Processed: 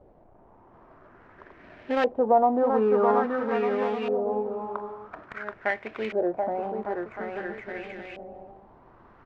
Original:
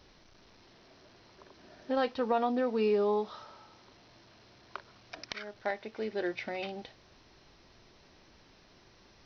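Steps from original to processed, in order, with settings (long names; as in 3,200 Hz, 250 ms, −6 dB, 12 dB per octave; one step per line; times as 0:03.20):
gap after every zero crossing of 0.12 ms
bouncing-ball delay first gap 730 ms, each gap 0.65×, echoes 5
auto-filter low-pass saw up 0.49 Hz 610–2,700 Hz
level +4 dB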